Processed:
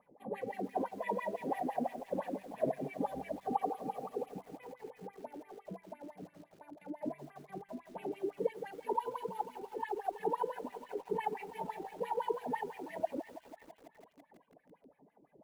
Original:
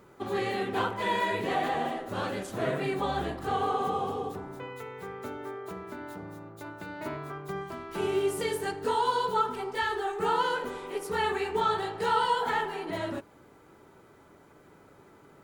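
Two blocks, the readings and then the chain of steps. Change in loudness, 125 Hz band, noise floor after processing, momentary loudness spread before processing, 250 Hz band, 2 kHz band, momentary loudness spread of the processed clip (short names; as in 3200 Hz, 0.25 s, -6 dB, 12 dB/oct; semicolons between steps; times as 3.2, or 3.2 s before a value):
-9.0 dB, -12.0 dB, -70 dBFS, 14 LU, -5.5 dB, -16.0 dB, 14 LU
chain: fixed phaser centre 360 Hz, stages 6; on a send: thin delay 0.348 s, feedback 54%, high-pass 1800 Hz, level -5 dB; on the sum: reverb removal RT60 1.1 s; high shelf 3300 Hz -11.5 dB; careless resampling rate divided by 4×, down filtered, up zero stuff; wah 5.9 Hz 290–2400 Hz, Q 5.2; RIAA curve playback; lo-fi delay 0.165 s, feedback 80%, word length 10-bit, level -14 dB; gain +7 dB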